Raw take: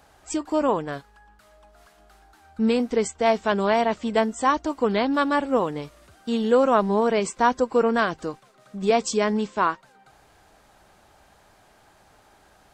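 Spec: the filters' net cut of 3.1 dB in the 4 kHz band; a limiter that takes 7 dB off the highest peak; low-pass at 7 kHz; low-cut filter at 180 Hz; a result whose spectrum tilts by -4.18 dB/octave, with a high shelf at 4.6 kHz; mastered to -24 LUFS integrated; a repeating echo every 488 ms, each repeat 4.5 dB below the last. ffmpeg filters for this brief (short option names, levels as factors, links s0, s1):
-af "highpass=180,lowpass=7000,equalizer=f=4000:t=o:g=-7,highshelf=f=4600:g=6,alimiter=limit=0.211:level=0:latency=1,aecho=1:1:488|976|1464|1952|2440|2928|3416|3904|4392:0.596|0.357|0.214|0.129|0.0772|0.0463|0.0278|0.0167|0.01,volume=1.06"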